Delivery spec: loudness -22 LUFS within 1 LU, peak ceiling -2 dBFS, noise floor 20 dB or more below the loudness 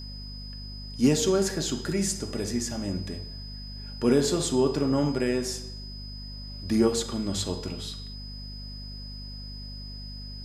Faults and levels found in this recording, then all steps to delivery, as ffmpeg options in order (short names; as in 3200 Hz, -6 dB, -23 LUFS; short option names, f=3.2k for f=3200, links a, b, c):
hum 50 Hz; harmonics up to 250 Hz; hum level -37 dBFS; steady tone 5000 Hz; tone level -42 dBFS; loudness -27.0 LUFS; peak -10.5 dBFS; loudness target -22.0 LUFS
-> -af "bandreject=f=50:t=h:w=4,bandreject=f=100:t=h:w=4,bandreject=f=150:t=h:w=4,bandreject=f=200:t=h:w=4,bandreject=f=250:t=h:w=4"
-af "bandreject=f=5k:w=30"
-af "volume=5dB"